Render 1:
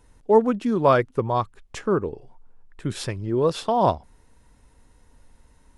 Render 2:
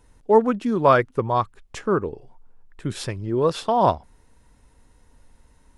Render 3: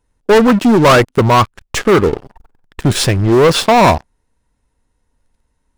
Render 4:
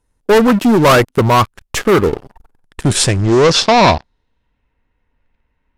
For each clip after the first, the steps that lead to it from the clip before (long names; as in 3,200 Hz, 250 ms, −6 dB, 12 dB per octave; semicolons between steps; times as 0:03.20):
dynamic equaliser 1,500 Hz, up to +4 dB, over −31 dBFS, Q 0.86
leveller curve on the samples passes 5
low-pass filter sweep 14,000 Hz → 2,500 Hz, 0:02.34–0:04.74; level −1 dB